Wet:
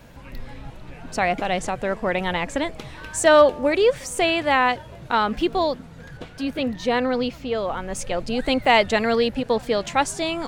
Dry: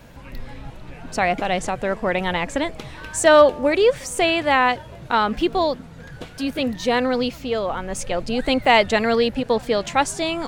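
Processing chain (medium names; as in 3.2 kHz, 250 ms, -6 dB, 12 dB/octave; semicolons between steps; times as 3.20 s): 6.17–7.59 s: treble shelf 6 kHz -8.5 dB; trim -1.5 dB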